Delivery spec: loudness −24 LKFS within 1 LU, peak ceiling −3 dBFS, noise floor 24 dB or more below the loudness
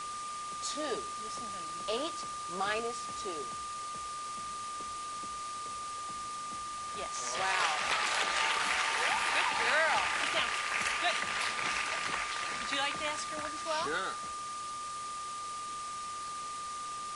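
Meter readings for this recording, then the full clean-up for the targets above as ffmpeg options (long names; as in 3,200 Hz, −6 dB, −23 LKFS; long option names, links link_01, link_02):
interfering tone 1,200 Hz; level of the tone −38 dBFS; background noise floor −40 dBFS; target noise floor −58 dBFS; integrated loudness −33.5 LKFS; sample peak −15.5 dBFS; target loudness −24.0 LKFS
→ -af "bandreject=frequency=1200:width=30"
-af "afftdn=noise_reduction=18:noise_floor=-40"
-af "volume=9.5dB"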